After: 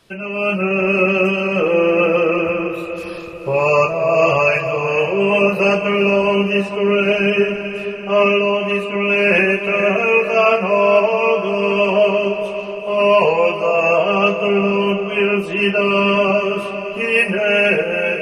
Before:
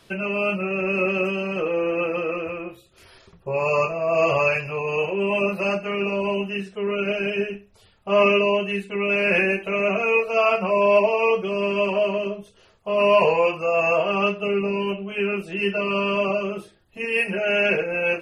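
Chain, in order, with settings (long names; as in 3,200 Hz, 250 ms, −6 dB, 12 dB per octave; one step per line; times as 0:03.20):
automatic gain control
on a send: feedback delay with all-pass diffusion 457 ms, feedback 50%, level −9.5 dB
on the sum: level −1.5 dB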